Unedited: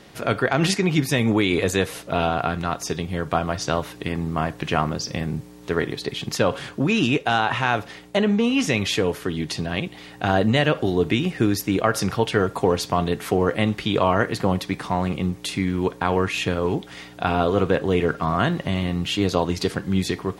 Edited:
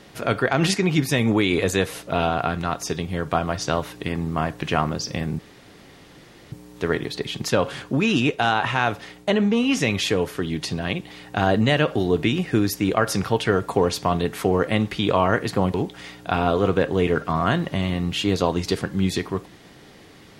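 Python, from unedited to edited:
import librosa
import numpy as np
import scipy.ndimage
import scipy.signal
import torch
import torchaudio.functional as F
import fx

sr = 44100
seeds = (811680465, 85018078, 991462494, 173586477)

y = fx.edit(x, sr, fx.insert_room_tone(at_s=5.39, length_s=1.13),
    fx.cut(start_s=14.61, length_s=2.06), tone=tone)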